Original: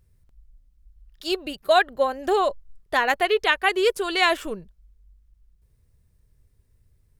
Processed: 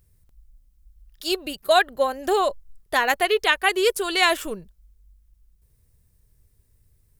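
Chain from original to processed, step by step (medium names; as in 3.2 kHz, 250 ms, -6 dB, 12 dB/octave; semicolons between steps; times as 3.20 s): treble shelf 6.7 kHz +11.5 dB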